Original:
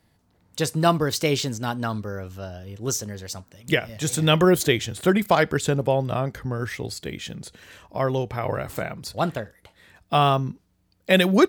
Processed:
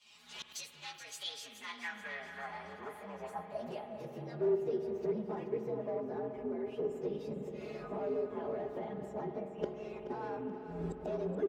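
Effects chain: inharmonic rescaling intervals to 118%; recorder AGC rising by 61 dB/s; comb 4.8 ms, depth 87%; hard clip -16.5 dBFS, distortion -10 dB; flipped gate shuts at -27 dBFS, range -24 dB; band-pass sweep 3700 Hz -> 390 Hz, 1.12–4.34; feedback echo 0.428 s, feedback 43%, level -11.5 dB; on a send at -7 dB: reverb RT60 4.3 s, pre-delay 46 ms; on the sum: gain +14 dB

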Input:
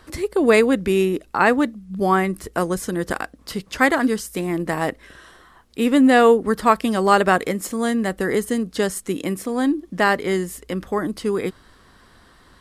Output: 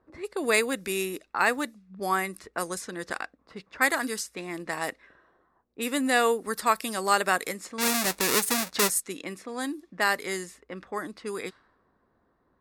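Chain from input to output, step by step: 7.78–8.9 half-waves squared off; low-pass opened by the level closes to 530 Hz, open at -16.5 dBFS; tilt +3.5 dB/oct; notch 3100 Hz, Q 8.3; gain -7.5 dB

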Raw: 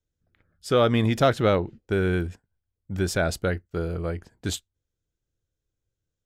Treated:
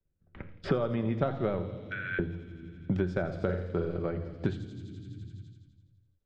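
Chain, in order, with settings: transient shaper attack +6 dB, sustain -3 dB; gate with hold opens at -40 dBFS; tape spacing loss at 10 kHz 39 dB; thin delay 84 ms, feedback 65%, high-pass 4500 Hz, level -4 dB; flange 1.3 Hz, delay 5.3 ms, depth 8.8 ms, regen +79%; 1.77–2.19 steep high-pass 1500 Hz 36 dB/oct; 3.34–3.99 flutter echo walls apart 7.9 m, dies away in 0.39 s; shoebox room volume 2900 m³, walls furnished, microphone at 1.1 m; three-band squash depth 100%; gain -3 dB

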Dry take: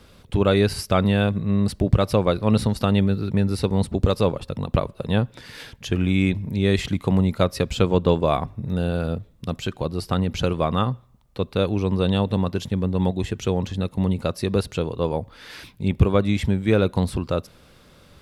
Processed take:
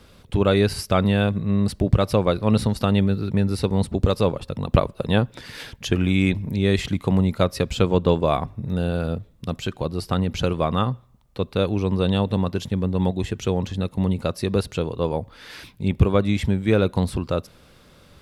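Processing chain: 4.65–6.56 harmonic-percussive split percussive +4 dB

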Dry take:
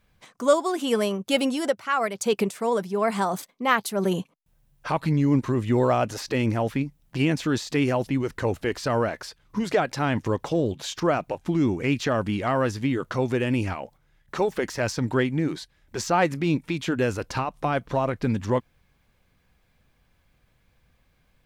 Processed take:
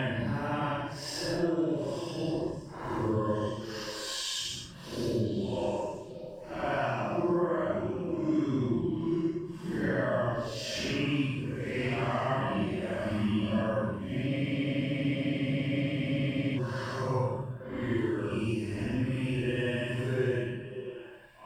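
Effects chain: slices in reverse order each 95 ms, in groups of 4; ripple EQ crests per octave 1.3, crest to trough 8 dB; compressor, threshold -26 dBFS, peak gain reduction 15 dB; Paulstretch 5.6×, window 0.10 s, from 10.02; delay with a stepping band-pass 0.291 s, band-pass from 170 Hz, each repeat 1.4 oct, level -6 dB; spectral freeze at 14.31, 2.26 s; gain -1.5 dB

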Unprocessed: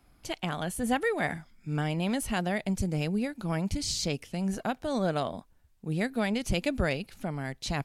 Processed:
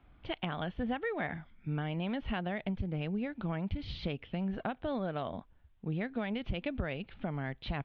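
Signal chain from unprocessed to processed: elliptic low-pass 3400 Hz, stop band 60 dB; bell 60 Hz +4.5 dB 1.7 oct; compressor, threshold -31 dBFS, peak gain reduction 10 dB

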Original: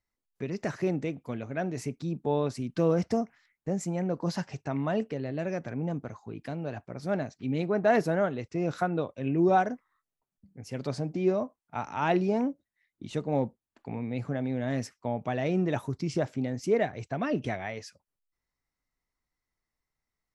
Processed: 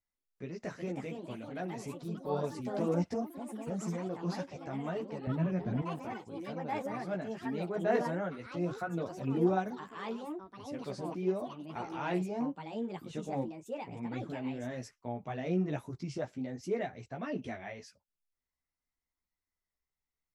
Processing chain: chorus voices 4, 1.2 Hz, delay 14 ms, depth 3 ms; echoes that change speed 0.455 s, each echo +4 st, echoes 3, each echo -6 dB; 5.27–5.82 tone controls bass +15 dB, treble -10 dB; gain -5 dB

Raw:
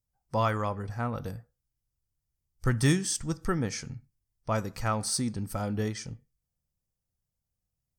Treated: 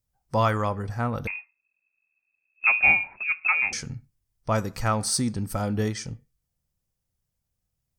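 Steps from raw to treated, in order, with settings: 1.27–3.73 inverted band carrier 2600 Hz; gain +4.5 dB

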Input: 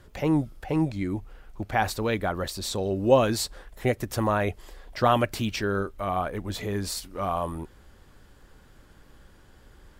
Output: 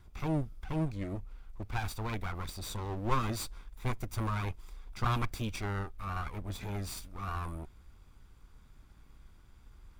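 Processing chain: minimum comb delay 0.83 ms; low shelf 96 Hz +9.5 dB; gain -8.5 dB

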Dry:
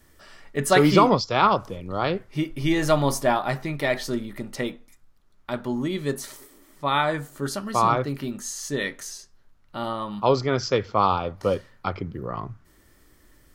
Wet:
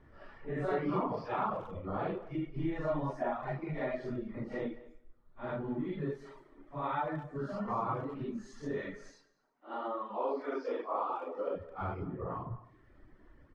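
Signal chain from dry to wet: phase scrambler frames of 0.2 s; LPF 1500 Hz 12 dB/oct; reverb removal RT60 0.68 s; 9.09–11.55 steep high-pass 260 Hz 48 dB/oct; compressor 2.5:1, threshold -37 dBFS, peak gain reduction 16 dB; speakerphone echo 0.21 s, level -17 dB; two-slope reverb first 0.94 s, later 2.6 s, from -27 dB, DRR 15 dB

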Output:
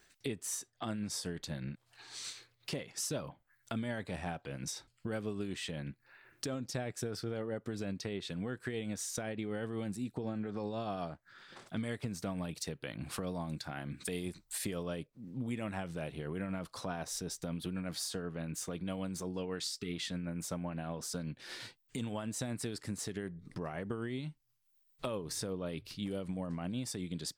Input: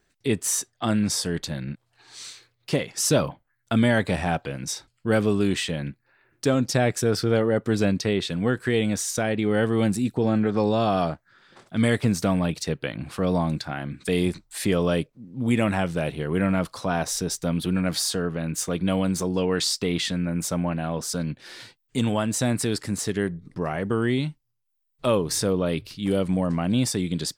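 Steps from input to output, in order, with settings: 12.38–14.83 high shelf 6300 Hz +8 dB; 19.64–19.93 spectral gain 440–1200 Hz -19 dB; compressor 4:1, threshold -34 dBFS, peak gain reduction 15.5 dB; tremolo triangle 8 Hz, depth 35%; mismatched tape noise reduction encoder only; gain -2 dB

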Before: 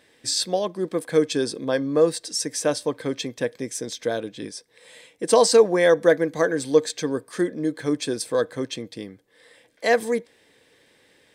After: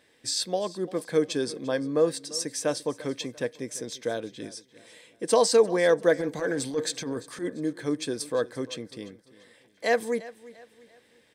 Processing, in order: 6.18–7.5 transient shaper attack -12 dB, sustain +5 dB; on a send: feedback echo 0.344 s, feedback 39%, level -19 dB; on the sum: gain -4.5 dB

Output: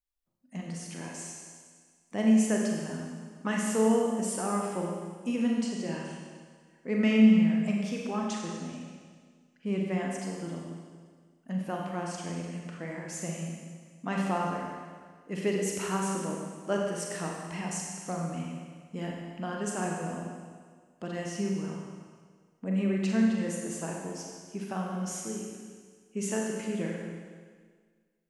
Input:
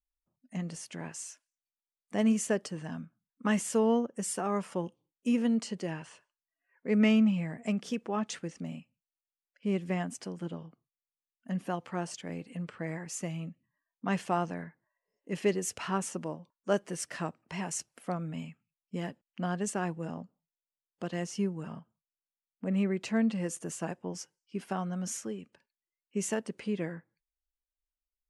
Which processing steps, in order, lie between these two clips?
Schroeder reverb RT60 1.7 s, combs from 32 ms, DRR -1 dB; gain -2 dB

